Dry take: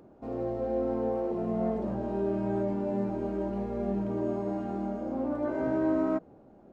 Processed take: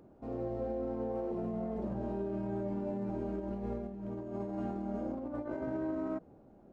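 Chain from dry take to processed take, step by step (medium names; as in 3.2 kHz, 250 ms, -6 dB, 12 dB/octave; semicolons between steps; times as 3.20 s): bass shelf 170 Hz +5.5 dB; 3.40–5.62 s: compressor with a negative ratio -32 dBFS, ratio -0.5; peak limiter -23.5 dBFS, peak gain reduction 7.5 dB; trim -5 dB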